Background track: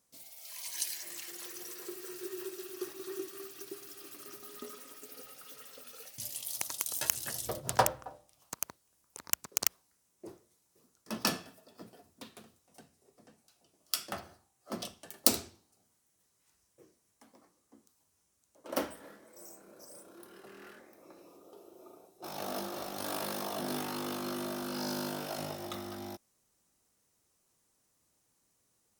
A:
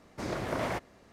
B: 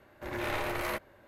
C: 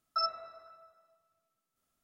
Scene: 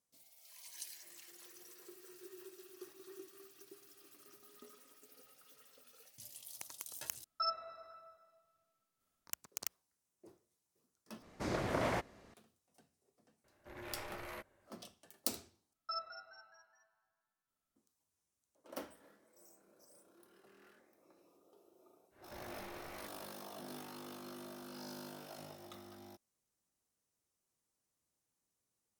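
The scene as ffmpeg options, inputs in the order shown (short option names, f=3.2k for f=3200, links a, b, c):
-filter_complex "[3:a]asplit=2[a][b];[2:a]asplit=2[c][d];[0:a]volume=-12.5dB[e];[a]dynaudnorm=f=180:g=5:m=5dB[f];[b]asplit=5[g][h][i][j][k];[h]adelay=210,afreqshift=110,volume=-12dB[l];[i]adelay=420,afreqshift=220,volume=-19.1dB[m];[j]adelay=630,afreqshift=330,volume=-26.3dB[n];[k]adelay=840,afreqshift=440,volume=-33.4dB[o];[g][l][m][n][o]amix=inputs=5:normalize=0[p];[d]acompressor=threshold=-44dB:ratio=6:attack=3.2:release=140:knee=1:detection=peak[q];[e]asplit=4[r][s][t][u];[r]atrim=end=7.244[v];[f]atrim=end=2.03,asetpts=PTS-STARTPTS,volume=-5.5dB[w];[s]atrim=start=9.266:end=11.224[x];[1:a]atrim=end=1.12,asetpts=PTS-STARTPTS,volume=-2.5dB[y];[t]atrim=start=12.336:end=15.734[z];[p]atrim=end=2.03,asetpts=PTS-STARTPTS,volume=-10dB[aa];[u]atrim=start=17.756[ab];[c]atrim=end=1.27,asetpts=PTS-STARTPTS,volume=-14dB,afade=t=in:d=0.004:c=hsin,afade=t=out:st=1.266:d=0.004:c=hsin,adelay=13440[ac];[q]atrim=end=1.27,asetpts=PTS-STARTPTS,volume=-4.5dB,afade=t=in:d=0.1,afade=t=out:st=1.17:d=0.1,adelay=22100[ad];[v][w]acrossfade=d=0.004:c1=hsin:c2=hsin[ae];[ae][x]acrossfade=d=0.004:c1=hsin:c2=hsin[af];[af][y]acrossfade=d=0.004:c1=hsin:c2=hsin[ag];[ag][z]acrossfade=d=0.004:c1=hsin:c2=hsin[ah];[ah][aa]acrossfade=d=0.004:c1=hsin:c2=hsin[ai];[ai][ab]acrossfade=d=0.004:c1=hsin:c2=hsin[aj];[aj][ac][ad]amix=inputs=3:normalize=0"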